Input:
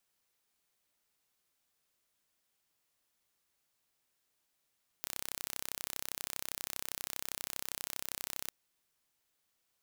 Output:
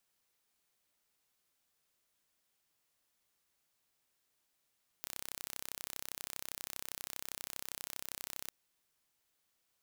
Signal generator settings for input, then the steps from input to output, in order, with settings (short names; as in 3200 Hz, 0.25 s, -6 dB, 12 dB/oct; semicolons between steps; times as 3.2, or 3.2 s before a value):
pulse train 32.5/s, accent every 0, -11 dBFS 3.46 s
limiter -14.5 dBFS